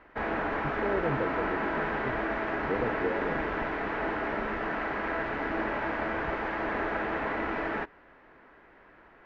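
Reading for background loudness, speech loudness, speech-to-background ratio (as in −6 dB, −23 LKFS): −31.5 LKFS, −36.0 LKFS, −4.5 dB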